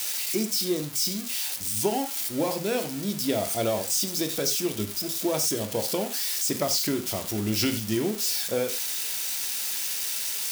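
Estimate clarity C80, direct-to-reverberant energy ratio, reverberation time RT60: 15.0 dB, 6.0 dB, no single decay rate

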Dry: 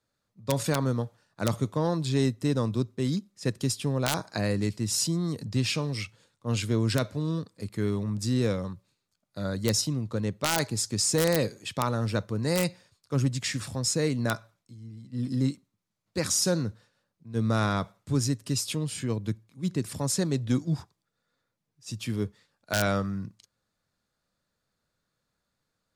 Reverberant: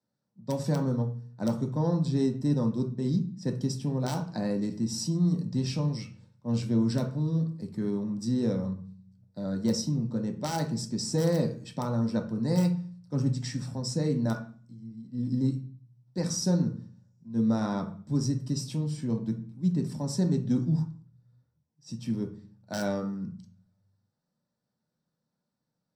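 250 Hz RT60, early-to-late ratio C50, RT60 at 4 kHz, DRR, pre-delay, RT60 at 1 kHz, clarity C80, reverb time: 0.75 s, 10.5 dB, 0.40 s, 3.0 dB, 3 ms, 0.40 s, 16.0 dB, 0.45 s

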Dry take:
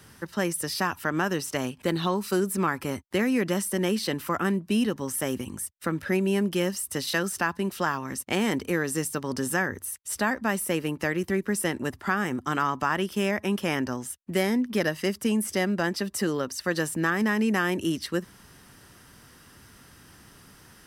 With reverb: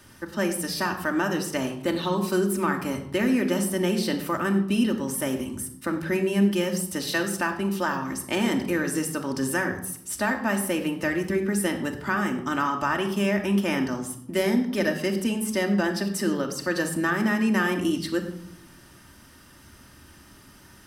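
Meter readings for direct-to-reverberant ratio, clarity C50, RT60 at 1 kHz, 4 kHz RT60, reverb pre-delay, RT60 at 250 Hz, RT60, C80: 2.5 dB, 9.5 dB, 0.70 s, 0.50 s, 3 ms, 1.3 s, 0.70 s, 12.0 dB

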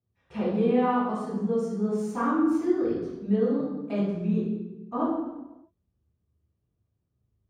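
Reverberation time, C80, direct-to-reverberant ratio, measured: 1.0 s, 2.5 dB, -13.0 dB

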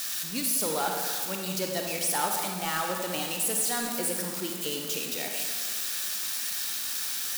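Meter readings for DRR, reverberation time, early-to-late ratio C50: 1.5 dB, 1.8 s, 2.5 dB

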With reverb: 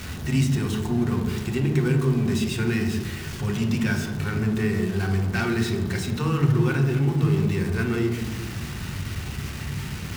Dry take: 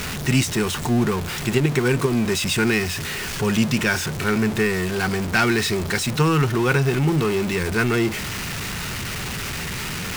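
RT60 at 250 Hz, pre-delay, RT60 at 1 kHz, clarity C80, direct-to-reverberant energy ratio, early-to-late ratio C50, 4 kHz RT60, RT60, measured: 1.6 s, 3 ms, 1.1 s, 8.5 dB, 2.5 dB, 6.0 dB, 0.85 s, 1.2 s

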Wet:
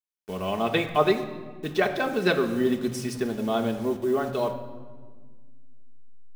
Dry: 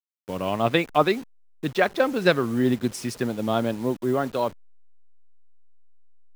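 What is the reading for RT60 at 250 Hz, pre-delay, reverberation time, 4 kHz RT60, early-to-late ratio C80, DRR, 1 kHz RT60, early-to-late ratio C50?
2.6 s, 3 ms, 1.5 s, 1.0 s, 12.0 dB, 2.0 dB, 1.4 s, 10.5 dB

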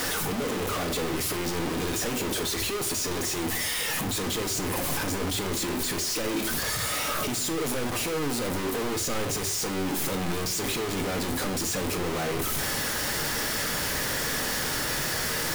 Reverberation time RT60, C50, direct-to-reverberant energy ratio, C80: 0.55 s, 13.0 dB, 6.0 dB, 17.5 dB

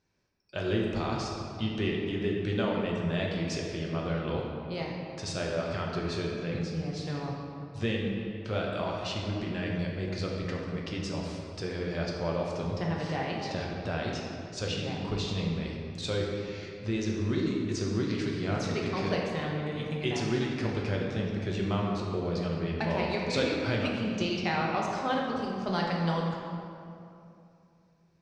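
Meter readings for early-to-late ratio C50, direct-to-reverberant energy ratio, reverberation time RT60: 0.5 dB, -2.5 dB, 2.8 s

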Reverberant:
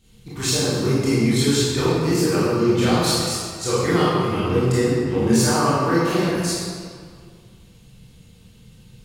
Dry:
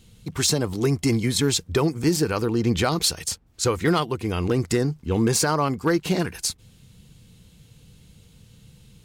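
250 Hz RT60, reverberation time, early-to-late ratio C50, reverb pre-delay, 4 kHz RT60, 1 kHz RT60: 1.9 s, 2.0 s, -4.0 dB, 20 ms, 1.4 s, 2.1 s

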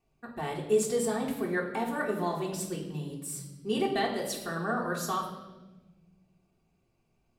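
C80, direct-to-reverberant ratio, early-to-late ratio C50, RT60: 8.0 dB, -3.5 dB, 5.5 dB, 1.2 s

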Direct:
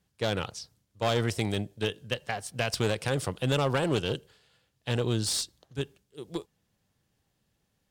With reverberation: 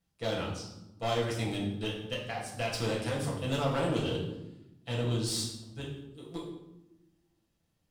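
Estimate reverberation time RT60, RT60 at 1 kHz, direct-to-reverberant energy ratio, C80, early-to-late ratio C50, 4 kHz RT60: 0.95 s, 0.85 s, -4.0 dB, 7.0 dB, 4.0 dB, 0.65 s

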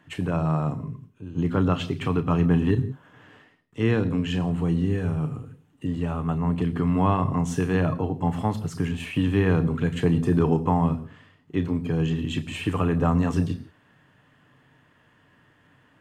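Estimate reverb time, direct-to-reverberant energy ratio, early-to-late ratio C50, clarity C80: no single decay rate, 9.5 dB, 17.5 dB, 18.5 dB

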